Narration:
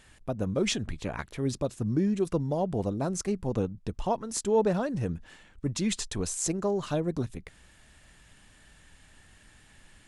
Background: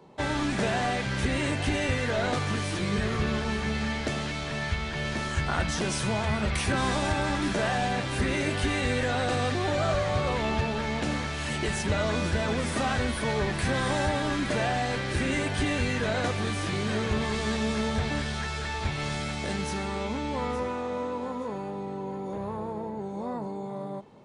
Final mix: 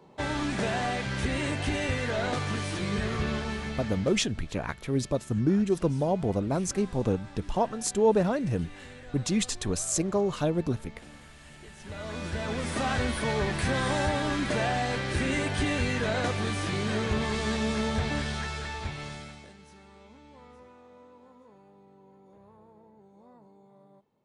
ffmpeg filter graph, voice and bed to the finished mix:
-filter_complex "[0:a]adelay=3500,volume=2dB[a];[1:a]volume=18dB,afade=t=out:st=3.32:d=0.96:silence=0.11885,afade=t=in:st=11.77:d=1.2:silence=0.1,afade=t=out:st=18.31:d=1.22:silence=0.0891251[b];[a][b]amix=inputs=2:normalize=0"

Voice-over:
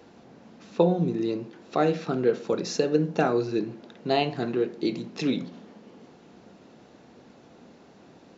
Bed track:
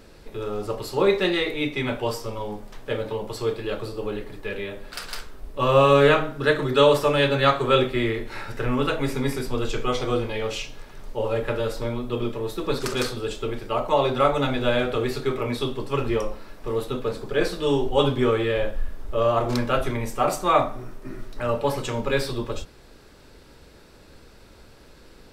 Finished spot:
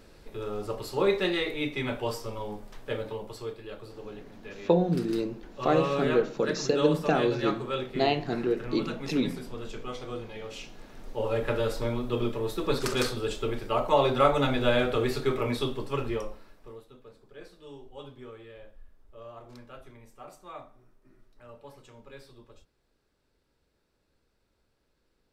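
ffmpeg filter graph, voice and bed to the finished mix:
-filter_complex "[0:a]adelay=3900,volume=-1.5dB[a];[1:a]volume=6dB,afade=t=out:st=2.9:d=0.66:silence=0.398107,afade=t=in:st=10.46:d=1.12:silence=0.281838,afade=t=out:st=15.46:d=1.37:silence=0.0749894[b];[a][b]amix=inputs=2:normalize=0"

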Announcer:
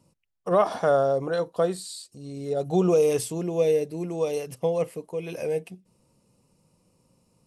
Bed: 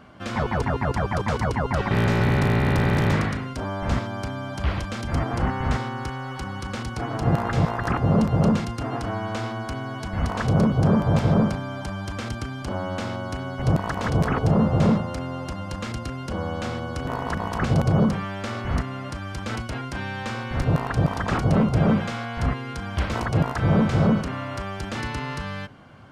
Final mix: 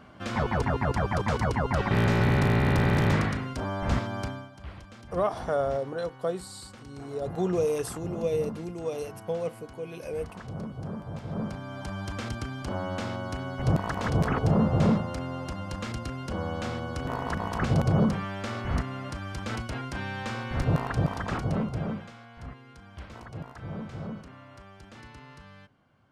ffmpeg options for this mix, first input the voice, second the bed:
-filter_complex "[0:a]adelay=4650,volume=-6dB[a];[1:a]volume=11.5dB,afade=t=out:st=4.24:d=0.26:silence=0.177828,afade=t=in:st=11.27:d=0.73:silence=0.199526,afade=t=out:st=20.79:d=1.34:silence=0.188365[b];[a][b]amix=inputs=2:normalize=0"

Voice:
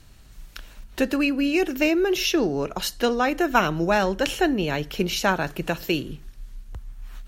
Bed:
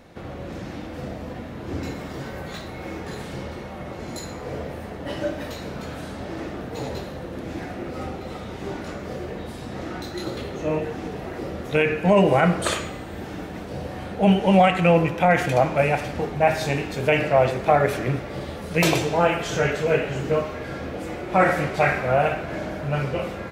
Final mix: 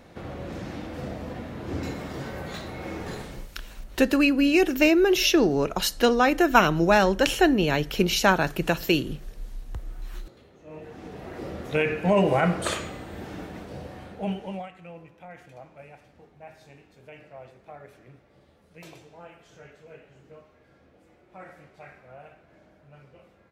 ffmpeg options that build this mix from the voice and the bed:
-filter_complex "[0:a]adelay=3000,volume=2dB[a];[1:a]volume=17dB,afade=t=out:st=3.13:d=0.35:silence=0.0891251,afade=t=in:st=10.66:d=0.84:silence=0.11885,afade=t=out:st=13.42:d=1.28:silence=0.0707946[b];[a][b]amix=inputs=2:normalize=0"

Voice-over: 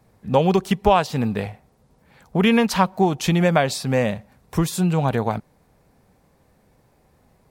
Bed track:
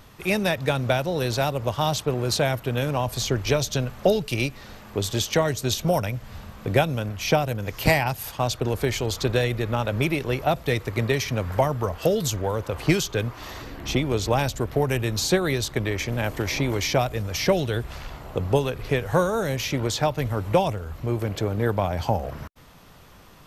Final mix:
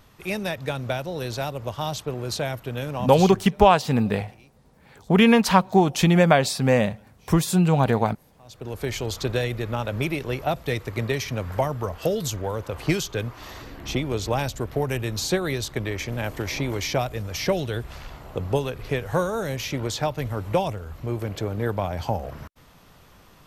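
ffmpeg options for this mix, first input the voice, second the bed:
-filter_complex "[0:a]adelay=2750,volume=1dB[a];[1:a]volume=21.5dB,afade=t=out:st=3.19:d=0.32:silence=0.0630957,afade=t=in:st=8.44:d=0.52:silence=0.0473151[b];[a][b]amix=inputs=2:normalize=0"

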